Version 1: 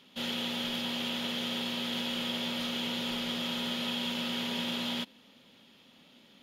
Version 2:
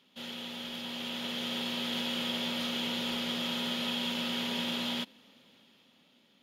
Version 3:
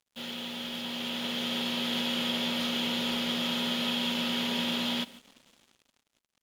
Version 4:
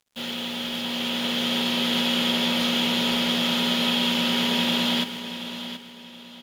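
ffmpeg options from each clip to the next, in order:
-af "lowshelf=f=64:g=-8.5,dynaudnorm=f=220:g=11:m=7.5dB,volume=-7dB"
-filter_complex "[0:a]asplit=2[a][b];[b]adelay=145.8,volume=-21dB,highshelf=f=4k:g=-3.28[c];[a][c]amix=inputs=2:normalize=0,acrusher=bits=8:mix=0:aa=0.5,volume=3dB"
-af "aecho=1:1:728|1456|2184:0.282|0.0902|0.0289,volume=7dB"

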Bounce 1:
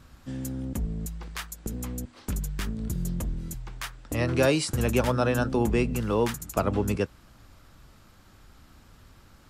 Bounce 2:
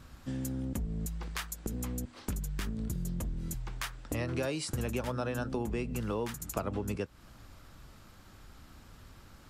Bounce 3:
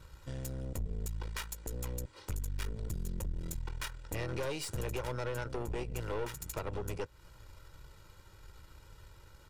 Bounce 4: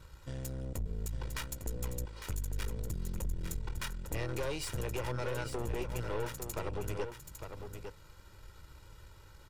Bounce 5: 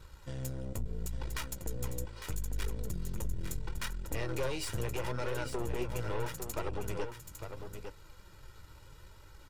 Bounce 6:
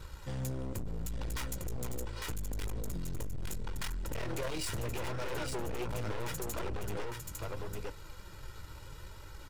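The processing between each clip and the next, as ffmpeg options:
-af "acompressor=threshold=-32dB:ratio=4"
-af "aecho=1:1:2.1:0.85,aeval=exprs='(tanh(39.8*val(0)+0.8)-tanh(0.8))/39.8':c=same"
-af "aecho=1:1:854:0.422"
-af "flanger=delay=2.2:depth=8.1:regen=56:speed=0.75:shape=triangular,volume=5dB"
-af "asoftclip=type=hard:threshold=-38.5dB,volume=6dB"

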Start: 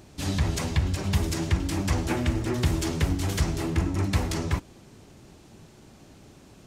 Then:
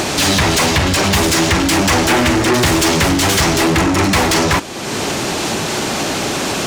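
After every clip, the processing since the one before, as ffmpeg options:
-filter_complex "[0:a]acompressor=mode=upward:threshold=-27dB:ratio=2.5,asplit=2[a][b];[b]highpass=f=720:p=1,volume=29dB,asoftclip=type=tanh:threshold=-10.5dB[c];[a][c]amix=inputs=2:normalize=0,lowpass=f=8k:p=1,volume=-6dB,volume=5.5dB"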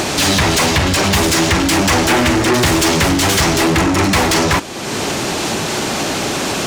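-af anull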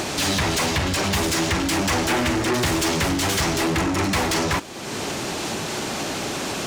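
-af "aeval=exprs='sgn(val(0))*max(abs(val(0))-0.00501,0)':c=same,volume=-8dB"

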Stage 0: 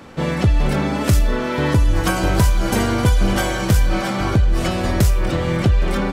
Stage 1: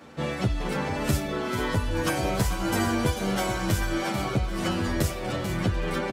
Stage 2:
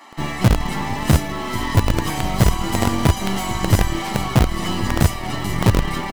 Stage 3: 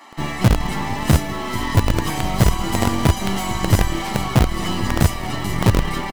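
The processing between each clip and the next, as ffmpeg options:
-filter_complex "[0:a]highpass=f=130:p=1,asplit=2[a][b];[b]aecho=0:1:440:0.355[c];[a][c]amix=inputs=2:normalize=0,asplit=2[d][e];[e]adelay=9.8,afreqshift=-1[f];[d][f]amix=inputs=2:normalize=1,volume=-3.5dB"
-filter_complex "[0:a]aecho=1:1:1:0.94,acrossover=split=350[a][b];[a]acrusher=bits=4:dc=4:mix=0:aa=0.000001[c];[b]asoftclip=type=tanh:threshold=-29dB[d];[c][d]amix=inputs=2:normalize=0,volume=5.5dB"
-af "aecho=1:1:190:0.0944"

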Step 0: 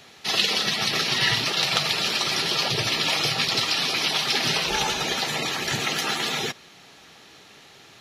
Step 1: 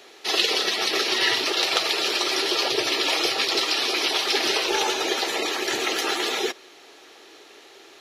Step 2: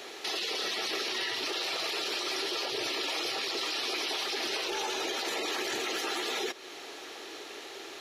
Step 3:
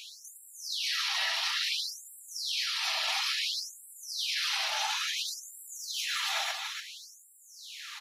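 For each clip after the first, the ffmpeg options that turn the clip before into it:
-af "lowshelf=f=240:t=q:w=3:g=-13.5"
-af "acompressor=threshold=-34dB:ratio=2.5,alimiter=level_in=4.5dB:limit=-24dB:level=0:latency=1:release=33,volume=-4.5dB,volume=4.5dB"
-af "aecho=1:1:40.82|288.6:0.355|0.562,afftfilt=real='re*gte(b*sr/1024,580*pow(7400/580,0.5+0.5*sin(2*PI*0.58*pts/sr)))':imag='im*gte(b*sr/1024,580*pow(7400/580,0.5+0.5*sin(2*PI*0.58*pts/sr)))':win_size=1024:overlap=0.75,volume=1.5dB"

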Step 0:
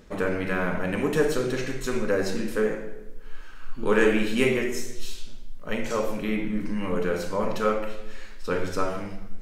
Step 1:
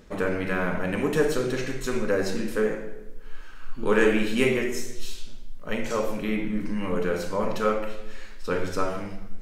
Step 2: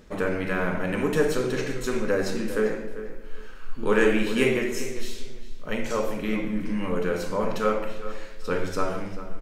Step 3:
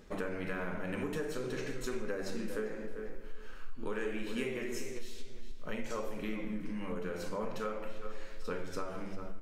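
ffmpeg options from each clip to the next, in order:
-af anull
-filter_complex "[0:a]asplit=2[a][b];[b]adelay=397,lowpass=f=3.7k:p=1,volume=-13dB,asplit=2[c][d];[d]adelay=397,lowpass=f=3.7k:p=1,volume=0.23,asplit=2[e][f];[f]adelay=397,lowpass=f=3.7k:p=1,volume=0.23[g];[a][c][e][g]amix=inputs=4:normalize=0"
-af "bandreject=f=50:t=h:w=6,bandreject=f=100:t=h:w=6,acompressor=threshold=-29dB:ratio=6,flanger=delay=2.4:depth=8.2:regen=83:speed=0.49:shape=sinusoidal"

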